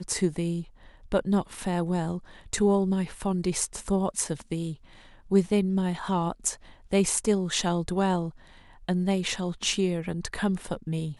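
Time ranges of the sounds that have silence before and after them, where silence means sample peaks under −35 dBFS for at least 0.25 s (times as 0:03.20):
0:01.12–0:02.18
0:02.53–0:04.74
0:05.31–0:06.54
0:06.92–0:08.30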